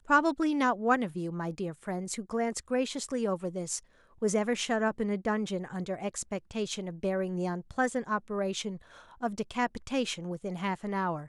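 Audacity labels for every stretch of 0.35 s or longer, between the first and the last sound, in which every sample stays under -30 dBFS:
3.780000	4.220000	silence
8.700000	9.230000	silence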